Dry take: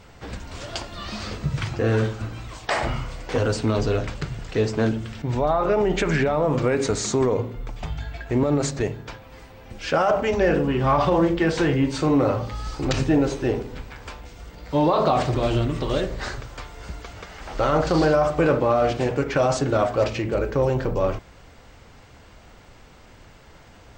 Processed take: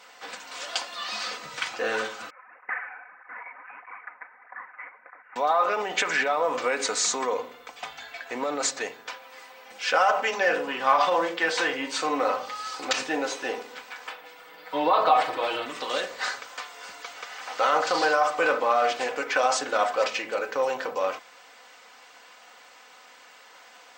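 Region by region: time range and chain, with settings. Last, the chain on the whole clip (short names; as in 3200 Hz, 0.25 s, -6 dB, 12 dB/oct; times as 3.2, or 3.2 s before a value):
2.3–5.36 steep high-pass 1800 Hz + inverted band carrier 3700 Hz + tape flanging out of phase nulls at 1.6 Hz, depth 6.4 ms
14.07–15.66 bell 6500 Hz -13.5 dB 1.1 oct + comb 6.3 ms
whole clip: HPF 820 Hz 12 dB/oct; comb 4 ms, depth 51%; gain +2.5 dB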